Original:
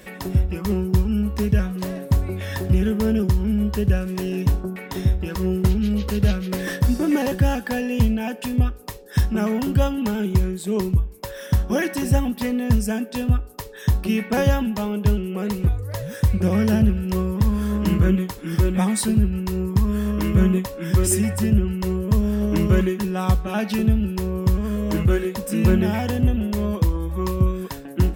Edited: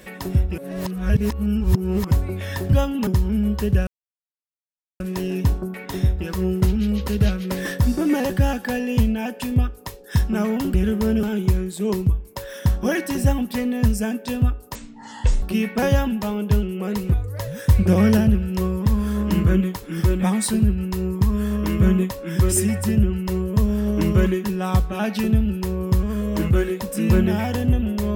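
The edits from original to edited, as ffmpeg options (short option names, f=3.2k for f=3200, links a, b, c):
-filter_complex "[0:a]asplit=12[a][b][c][d][e][f][g][h][i][j][k][l];[a]atrim=end=0.582[m];[b]atrim=start=0.578:end=2.112,asetpts=PTS-STARTPTS,areverse[n];[c]atrim=start=2.108:end=2.732[o];[d]atrim=start=9.758:end=10.102[p];[e]atrim=start=3.218:end=4.02,asetpts=PTS-STARTPTS,afade=t=out:st=0.798:d=0.004:c=hsin,apad=pad_dur=1.13[q];[f]atrim=start=4.02:end=9.762,asetpts=PTS-STARTPTS,afade=t=in:d=0.004:c=hsin[r];[g]atrim=start=2.728:end=3.222[s];[h]atrim=start=10.098:end=13.624[t];[i]atrim=start=13.62:end=13.97,asetpts=PTS-STARTPTS,asetrate=22932,aresample=44100[u];[j]atrim=start=13.966:end=16.242[v];[k]atrim=start=16.238:end=16.722,asetpts=PTS-STARTPTS,volume=3.5dB[w];[l]atrim=start=16.718[x];[m][n]acrossfade=d=0.004:c1=hsin:c2=hsin[y];[y][o]acrossfade=d=0.004:c1=hsin:c2=hsin[z];[z][p]acrossfade=d=0.004:c1=hsin:c2=hsin[aa];[q][r]concat=n=2:v=0:a=1[ab];[aa][ab]acrossfade=d=0.004:c1=hsin:c2=hsin[ac];[ac][s]acrossfade=d=0.004:c1=hsin:c2=hsin[ad];[ad][t]acrossfade=d=0.004:c1=hsin:c2=hsin[ae];[ae][u]acrossfade=d=0.004:c1=hsin:c2=hsin[af];[af][v]acrossfade=d=0.004:c1=hsin:c2=hsin[ag];[ag][w]acrossfade=d=0.004:c1=hsin:c2=hsin[ah];[ah][x]acrossfade=d=0.004:c1=hsin:c2=hsin"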